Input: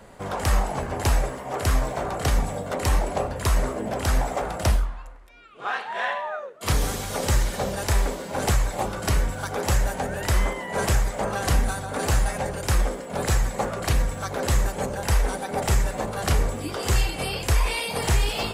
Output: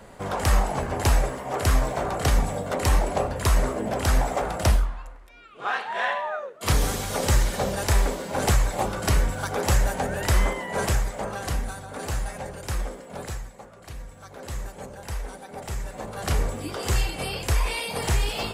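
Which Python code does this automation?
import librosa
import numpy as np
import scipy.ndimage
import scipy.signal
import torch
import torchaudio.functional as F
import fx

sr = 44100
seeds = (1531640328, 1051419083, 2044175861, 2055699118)

y = fx.gain(x, sr, db=fx.line((10.53, 1.0), (11.62, -7.0), (13.13, -7.0), (13.66, -19.5), (14.63, -11.0), (15.73, -11.0), (16.38, -2.0)))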